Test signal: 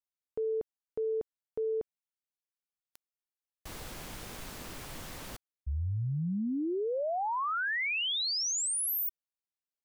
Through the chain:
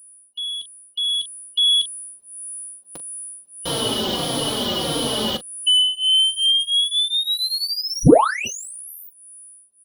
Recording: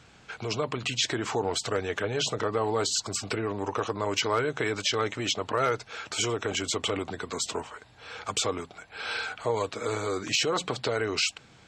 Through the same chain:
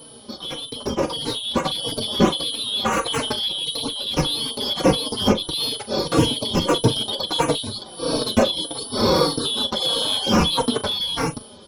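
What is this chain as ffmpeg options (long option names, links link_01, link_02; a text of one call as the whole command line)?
ffmpeg -i in.wav -filter_complex "[0:a]afftfilt=real='real(if(lt(b,272),68*(eq(floor(b/68),0)*2+eq(floor(b/68),1)*3+eq(floor(b/68),2)*0+eq(floor(b/68),3)*1)+mod(b,68),b),0)':imag='imag(if(lt(b,272),68*(eq(floor(b/68),0)*2+eq(floor(b/68),1)*3+eq(floor(b/68),2)*0+eq(floor(b/68),3)*1)+mod(b,68),b),0)':win_size=2048:overlap=0.75,acrossover=split=7200[link_01][link_02];[link_02]acompressor=threshold=-51dB:ratio=4:attack=1:release=60[link_03];[link_01][link_03]amix=inputs=2:normalize=0,alimiter=level_in=1dB:limit=-24dB:level=0:latency=1:release=292,volume=-1dB,asplit=2[link_04][link_05];[link_05]aecho=0:1:13|41:0.2|0.188[link_06];[link_04][link_06]amix=inputs=2:normalize=0,aeval=exprs='0.0708*sin(PI/2*2*val(0)/0.0708)':channel_layout=same,highshelf=frequency=10000:gain=-5,aeval=exprs='val(0)+0.0141*sin(2*PI*9800*n/s)':channel_layout=same,equalizer=frequency=125:width_type=o:width=1:gain=8,equalizer=frequency=250:width_type=o:width=1:gain=11,equalizer=frequency=500:width_type=o:width=1:gain=10,equalizer=frequency=1000:width_type=o:width=1:gain=4,equalizer=frequency=2000:width_type=o:width=1:gain=-7,equalizer=frequency=8000:width_type=o:width=1:gain=-10,dynaudnorm=framelen=540:gausssize=5:maxgain=13.5dB,asplit=2[link_07][link_08];[link_08]adelay=3.9,afreqshift=-1.6[link_09];[link_07][link_09]amix=inputs=2:normalize=1,volume=1dB" out.wav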